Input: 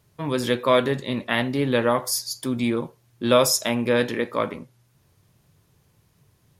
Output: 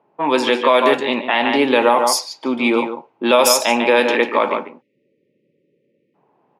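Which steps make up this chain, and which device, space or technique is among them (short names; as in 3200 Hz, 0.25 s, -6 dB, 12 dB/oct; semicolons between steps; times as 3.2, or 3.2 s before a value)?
1.79–3.23 notch 1700 Hz, Q 6.6; outdoor echo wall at 25 m, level -9 dB; 4.81–6.15 spectral delete 590–1800 Hz; laptop speaker (HPF 250 Hz 24 dB/oct; bell 850 Hz +12 dB 0.52 oct; bell 2600 Hz +8.5 dB 0.51 oct; limiter -10 dBFS, peak gain reduction 9 dB); low-pass opened by the level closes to 860 Hz, open at -16.5 dBFS; gain +7.5 dB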